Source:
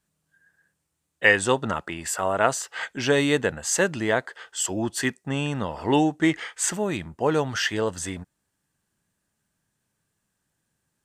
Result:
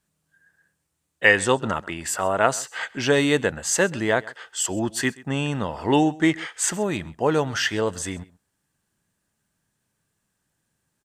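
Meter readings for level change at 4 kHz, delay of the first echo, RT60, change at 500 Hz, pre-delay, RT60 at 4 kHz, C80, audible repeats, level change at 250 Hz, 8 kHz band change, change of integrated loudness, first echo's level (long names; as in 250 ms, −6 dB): +1.5 dB, 131 ms, no reverb audible, +1.5 dB, no reverb audible, no reverb audible, no reverb audible, 1, +1.5 dB, +1.5 dB, +1.5 dB, −22.0 dB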